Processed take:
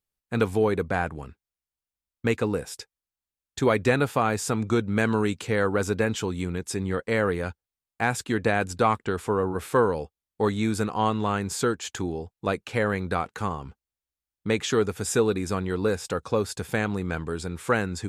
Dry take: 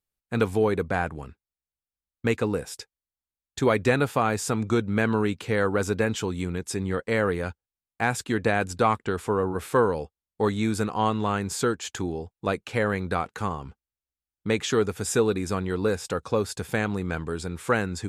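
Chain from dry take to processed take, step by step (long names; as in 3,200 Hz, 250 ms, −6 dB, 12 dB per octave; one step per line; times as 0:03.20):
0:04.84–0:05.47: dynamic equaliser 7,400 Hz, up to +7 dB, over −52 dBFS, Q 0.96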